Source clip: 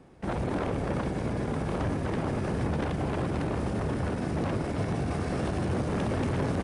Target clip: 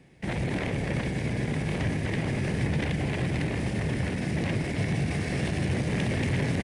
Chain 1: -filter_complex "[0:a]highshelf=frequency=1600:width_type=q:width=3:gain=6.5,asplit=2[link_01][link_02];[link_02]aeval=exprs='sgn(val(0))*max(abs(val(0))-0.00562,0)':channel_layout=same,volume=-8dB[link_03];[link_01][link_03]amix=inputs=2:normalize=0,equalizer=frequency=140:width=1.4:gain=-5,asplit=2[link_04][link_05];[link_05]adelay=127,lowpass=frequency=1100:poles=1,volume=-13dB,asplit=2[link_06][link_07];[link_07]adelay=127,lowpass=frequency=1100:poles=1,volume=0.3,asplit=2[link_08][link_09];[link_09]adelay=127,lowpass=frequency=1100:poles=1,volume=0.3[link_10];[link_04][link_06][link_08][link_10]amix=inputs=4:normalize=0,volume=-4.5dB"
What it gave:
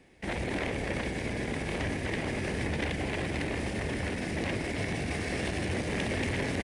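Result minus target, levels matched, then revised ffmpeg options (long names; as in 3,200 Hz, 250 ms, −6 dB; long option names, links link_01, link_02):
125 Hz band −4.5 dB
-filter_complex "[0:a]highshelf=frequency=1600:width_type=q:width=3:gain=6.5,asplit=2[link_01][link_02];[link_02]aeval=exprs='sgn(val(0))*max(abs(val(0))-0.00562,0)':channel_layout=same,volume=-8dB[link_03];[link_01][link_03]amix=inputs=2:normalize=0,equalizer=frequency=140:width=1.4:gain=6.5,asplit=2[link_04][link_05];[link_05]adelay=127,lowpass=frequency=1100:poles=1,volume=-13dB,asplit=2[link_06][link_07];[link_07]adelay=127,lowpass=frequency=1100:poles=1,volume=0.3,asplit=2[link_08][link_09];[link_09]adelay=127,lowpass=frequency=1100:poles=1,volume=0.3[link_10];[link_04][link_06][link_08][link_10]amix=inputs=4:normalize=0,volume=-4.5dB"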